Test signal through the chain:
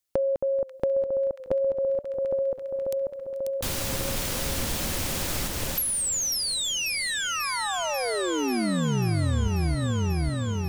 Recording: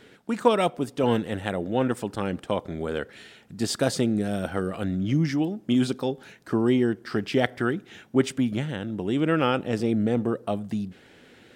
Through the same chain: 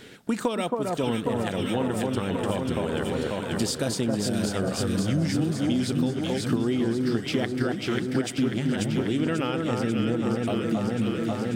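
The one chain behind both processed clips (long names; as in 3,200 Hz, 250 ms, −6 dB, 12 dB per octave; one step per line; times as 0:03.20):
high-shelf EQ 2,100 Hz +10.5 dB
on a send: delay that swaps between a low-pass and a high-pass 270 ms, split 1,400 Hz, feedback 79%, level −2.5 dB
on the sum: downward compressor, threshold −27 dBFS
low-shelf EQ 470 Hz +7 dB
feedback echo with a swinging delay time 436 ms, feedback 78%, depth 72 cents, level −20.5 dB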